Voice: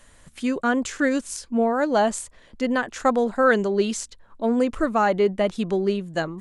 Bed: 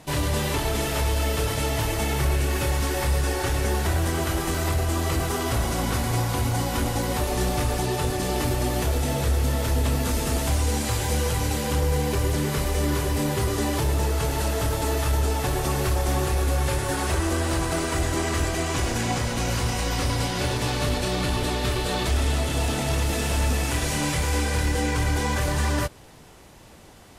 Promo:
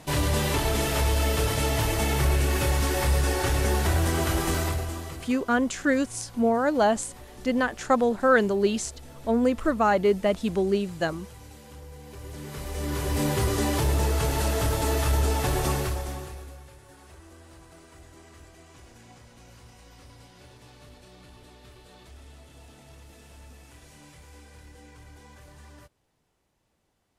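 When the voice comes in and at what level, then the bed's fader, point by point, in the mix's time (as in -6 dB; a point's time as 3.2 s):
4.85 s, -1.5 dB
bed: 4.56 s 0 dB
5.45 s -21.5 dB
11.99 s -21.5 dB
13.23 s -0.5 dB
15.7 s -0.5 dB
16.71 s -25.5 dB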